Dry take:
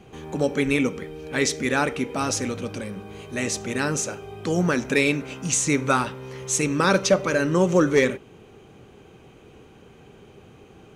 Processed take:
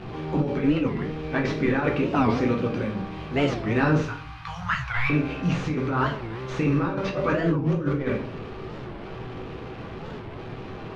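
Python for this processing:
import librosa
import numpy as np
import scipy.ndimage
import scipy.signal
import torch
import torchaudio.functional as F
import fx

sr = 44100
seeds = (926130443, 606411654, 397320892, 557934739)

y = fx.delta_mod(x, sr, bps=64000, step_db=-36.0)
y = fx.cheby1_bandstop(y, sr, low_hz=110.0, high_hz=960.0, order=3, at=(3.98, 5.1))
y = fx.over_compress(y, sr, threshold_db=-24.0, ratio=-0.5)
y = fx.air_absorb(y, sr, metres=310.0)
y = fx.room_shoebox(y, sr, seeds[0], volume_m3=54.0, walls='mixed', distance_m=0.63)
y = fx.record_warp(y, sr, rpm=45.0, depth_cents=250.0)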